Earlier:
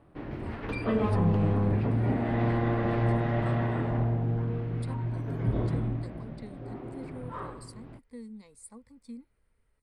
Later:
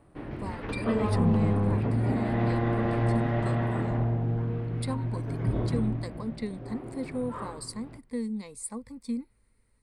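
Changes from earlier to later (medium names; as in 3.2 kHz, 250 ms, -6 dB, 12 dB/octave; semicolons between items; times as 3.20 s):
speech +11.5 dB; second sound: send on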